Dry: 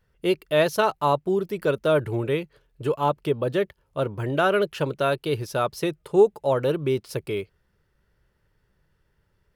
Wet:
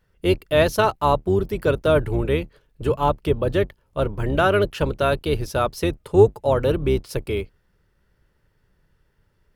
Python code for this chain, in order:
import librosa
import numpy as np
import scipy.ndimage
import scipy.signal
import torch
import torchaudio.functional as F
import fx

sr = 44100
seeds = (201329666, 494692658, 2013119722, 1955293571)

y = fx.octave_divider(x, sr, octaves=2, level_db=-1.0)
y = F.gain(torch.from_numpy(y), 2.5).numpy()